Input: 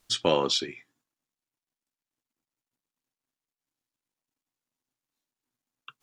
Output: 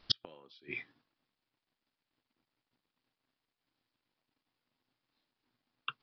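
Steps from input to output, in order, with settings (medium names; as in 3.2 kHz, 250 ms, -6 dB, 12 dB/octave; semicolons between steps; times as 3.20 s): resampled via 11.025 kHz; inverted gate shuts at -20 dBFS, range -40 dB; trim +7.5 dB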